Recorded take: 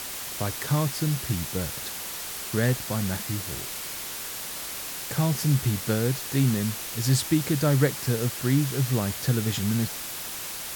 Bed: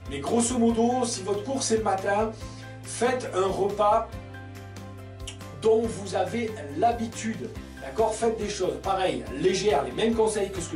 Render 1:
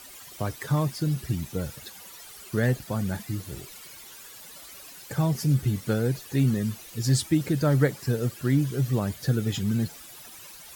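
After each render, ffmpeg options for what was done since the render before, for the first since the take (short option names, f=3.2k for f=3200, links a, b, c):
-af "afftdn=nr=14:nf=-35"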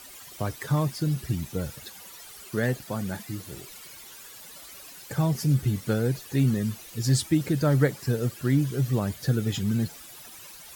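-filter_complex "[0:a]asettb=1/sr,asplit=3[a][b][c];[a]atrim=end=2.474[d];[b]atrim=start=2.47:end=3.68,asetpts=PTS-STARTPTS,afade=t=in:d=0.004:c=qsin,afade=t=out:st=1.206:d=0.004:c=qsin,lowshelf=f=96:g=-11[e];[c]atrim=start=3.676[f];[d][e]acrossfade=d=0.004:c1=hsin:c2=qsin[g];[g][f]acrossfade=d=0.004:c1=qsin:c2=hsin"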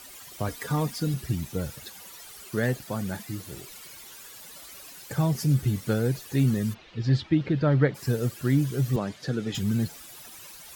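-filter_complex "[0:a]asettb=1/sr,asplit=3[a][b][c];[a]atrim=end=0.484[d];[b]atrim=start=0.48:end=1.14,asetpts=PTS-STARTPTS,afade=t=in:d=0.004:c=qsin,afade=t=out:st=0.656:d=0.004:c=qsin,aecho=1:1:4.2:0.65,atrim=end_sample=29106[e];[c]atrim=start=1.136[f];[d][e]acrossfade=d=0.004:c1=hsin:c2=qsin[g];[g][f]acrossfade=d=0.004:c1=qsin:c2=hsin,asplit=3[h][i][j];[h]afade=t=out:st=6.73:d=0.02[k];[i]lowpass=f=3.8k:w=0.5412,lowpass=f=3.8k:w=1.3066,afade=t=in:st=6.73:d=0.02,afade=t=out:st=7.94:d=0.02[l];[j]afade=t=in:st=7.94:d=0.02[m];[k][l][m]amix=inputs=3:normalize=0,asettb=1/sr,asplit=3[n][o][p];[n]atrim=end=8.964[q];[o]atrim=start=8.96:end=9.55,asetpts=PTS-STARTPTS,afade=t=in:d=0.004:c=qsin,afade=t=out:st=0.586:d=0.004:c=qsin,highpass=180,lowpass=5.5k[r];[p]atrim=start=9.546[s];[q][r]acrossfade=d=0.004:c1=hsin:c2=qsin[t];[t][s]acrossfade=d=0.004:c1=qsin:c2=hsin"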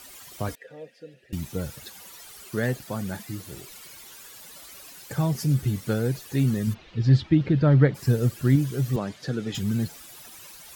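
-filter_complex "[0:a]asettb=1/sr,asplit=3[a][b][c];[a]atrim=end=0.554[d];[b]atrim=start=0.55:end=1.33,asetpts=PTS-STARTPTS,afade=t=in:d=0.004:c=qsin,afade=t=out:st=0.776:d=0.004:c=qsin,asplit=3[e][f][g];[e]bandpass=f=530:t=q:w=8,volume=0dB[h];[f]bandpass=f=1.84k:t=q:w=8,volume=-6dB[i];[g]bandpass=f=2.48k:t=q:w=8,volume=-9dB[j];[h][i][j]amix=inputs=3:normalize=0[k];[c]atrim=start=1.326[l];[d][k]acrossfade=d=0.004:c1=hsin:c2=qsin[m];[m][l]acrossfade=d=0.004:c1=qsin:c2=hsin,asettb=1/sr,asplit=3[n][o][p];[n]atrim=end=6.674[q];[o]atrim=start=6.67:end=8.56,asetpts=PTS-STARTPTS,afade=t=in:d=0.004:c=qsin,afade=t=out:st=1.886:d=0.004:c=qsin,lowshelf=f=230:g=7[r];[p]atrim=start=8.556[s];[q][r]acrossfade=d=0.004:c1=hsin:c2=qsin[t];[t][s]acrossfade=d=0.004:c1=qsin:c2=hsin"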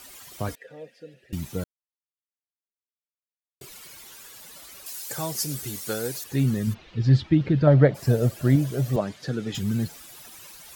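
-filter_complex "[0:a]asettb=1/sr,asplit=3[a][b][c];[a]atrim=end=4.864[d];[b]atrim=start=4.86:end=6.24,asetpts=PTS-STARTPTS,afade=t=in:d=0.004:c=qsin,afade=t=out:st=1.376:d=0.004:c=qsin,bass=f=250:g=-14,treble=f=4k:g=10[e];[c]atrim=start=6.236[f];[d][e]acrossfade=d=0.004:c1=hsin:c2=qsin[g];[g][f]acrossfade=d=0.004:c1=qsin:c2=hsin,asettb=1/sr,asplit=3[h][i][j];[h]atrim=end=7.674[k];[i]atrim=start=7.67:end=9.01,asetpts=PTS-STARTPTS,afade=t=in:d=0.004:c=qsin,afade=t=out:st=1.336:d=0.004:c=qsin,equalizer=f=630:t=o:w=0.53:g=12.5[l];[j]atrim=start=9.006[m];[k][l]acrossfade=d=0.004:c1=hsin:c2=qsin[n];[n][m]acrossfade=d=0.004:c1=qsin:c2=hsin,asplit=3[o][p][q];[o]atrim=end=1.64,asetpts=PTS-STARTPTS,afade=t=out:st=1.636:d=0.004:c=hsin[r];[p]atrim=start=1.64:end=3.61,asetpts=PTS-STARTPTS,volume=0[s];[q]atrim=start=3.61,asetpts=PTS-STARTPTS,afade=t=in:d=0.004:c=hsin[t];[r][s][t]concat=n=3:v=0:a=1"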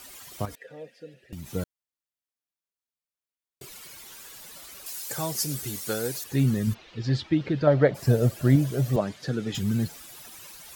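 -filter_complex "[0:a]asettb=1/sr,asplit=3[a][b][c];[a]atrim=end=0.454[d];[b]atrim=start=0.45:end=1.53,asetpts=PTS-STARTPTS,afade=t=in:d=0.004:c=qsin,afade=t=out:st=1.076:d=0.004:c=qsin,acompressor=threshold=-34dB:ratio=6:attack=3.2:release=140:knee=1:detection=peak[e];[c]atrim=start=1.526[f];[d][e]acrossfade=d=0.004:c1=hsin:c2=qsin[g];[g][f]acrossfade=d=0.004:c1=qsin:c2=hsin,asettb=1/sr,asplit=3[h][i][j];[h]atrim=end=4.104[k];[i]atrim=start=4.1:end=5.22,asetpts=PTS-STARTPTS,afade=t=in:d=0.004:c=qsin,afade=t=out:st=1.116:d=0.004:c=qsin,acrusher=bits=9:dc=4:mix=0:aa=0.000001[l];[j]atrim=start=5.216[m];[k][l]acrossfade=d=0.004:c1=hsin:c2=qsin[n];[n][m]acrossfade=d=0.004:c1=qsin:c2=hsin,asettb=1/sr,asplit=3[o][p][q];[o]atrim=end=6.734[r];[p]atrim=start=6.73:end=7.91,asetpts=PTS-STARTPTS,afade=t=in:d=0.004:c=qsin,afade=t=out:st=1.176:d=0.004:c=qsin,bass=f=250:g=-9,treble=f=4k:g=3[s];[q]atrim=start=7.906[t];[r][s]acrossfade=d=0.004:c1=hsin:c2=qsin[u];[u][t]acrossfade=d=0.004:c1=qsin:c2=hsin"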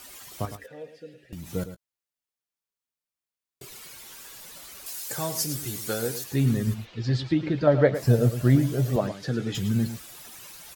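-filter_complex "[0:a]asplit=2[a][b];[b]adelay=17,volume=-12.5dB[c];[a][c]amix=inputs=2:normalize=0,aecho=1:1:109:0.266"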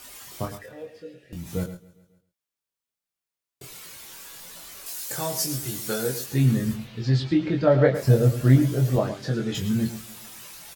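-filter_complex "[0:a]asplit=2[a][b];[b]adelay=23,volume=-3.5dB[c];[a][c]amix=inputs=2:normalize=0,aecho=1:1:137|274|411|548:0.0841|0.048|0.0273|0.0156"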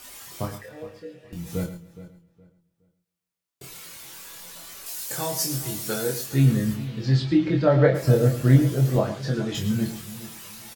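-filter_complex "[0:a]asplit=2[a][b];[b]adelay=29,volume=-7.5dB[c];[a][c]amix=inputs=2:normalize=0,asplit=2[d][e];[e]adelay=417,lowpass=f=2.6k:p=1,volume=-15.5dB,asplit=2[f][g];[g]adelay=417,lowpass=f=2.6k:p=1,volume=0.27,asplit=2[h][i];[i]adelay=417,lowpass=f=2.6k:p=1,volume=0.27[j];[d][f][h][j]amix=inputs=4:normalize=0"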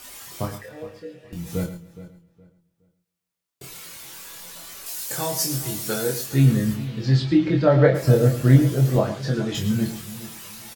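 -af "volume=2dB"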